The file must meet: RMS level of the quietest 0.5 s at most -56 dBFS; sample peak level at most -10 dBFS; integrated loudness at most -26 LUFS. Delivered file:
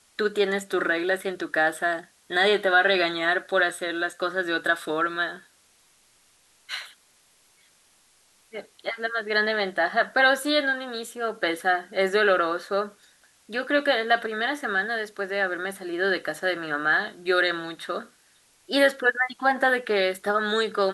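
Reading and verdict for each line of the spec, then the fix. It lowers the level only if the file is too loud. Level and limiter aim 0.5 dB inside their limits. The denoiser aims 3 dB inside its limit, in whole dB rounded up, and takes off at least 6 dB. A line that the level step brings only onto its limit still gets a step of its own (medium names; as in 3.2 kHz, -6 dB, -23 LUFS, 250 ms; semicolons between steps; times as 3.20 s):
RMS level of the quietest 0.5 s -61 dBFS: pass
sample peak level -8.0 dBFS: fail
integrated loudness -24.5 LUFS: fail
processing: trim -2 dB; peak limiter -10.5 dBFS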